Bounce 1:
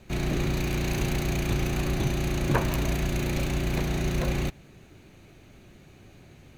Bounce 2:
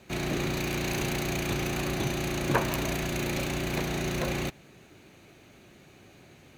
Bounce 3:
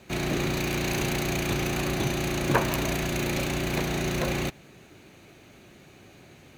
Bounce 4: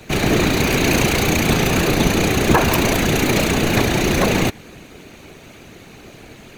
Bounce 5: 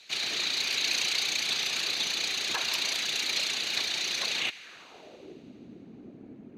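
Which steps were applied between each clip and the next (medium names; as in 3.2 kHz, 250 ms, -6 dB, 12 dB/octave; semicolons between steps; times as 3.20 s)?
high-pass 98 Hz 6 dB/octave; bass shelf 220 Hz -6 dB; trim +1.5 dB
short-mantissa float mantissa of 4-bit; trim +2.5 dB
whisper effect; loudness maximiser +12 dB; trim -1 dB
band-pass sweep 4.2 kHz -> 250 Hz, 4.34–5.43 s; feedback echo behind a high-pass 83 ms, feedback 82%, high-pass 1.6 kHz, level -22 dB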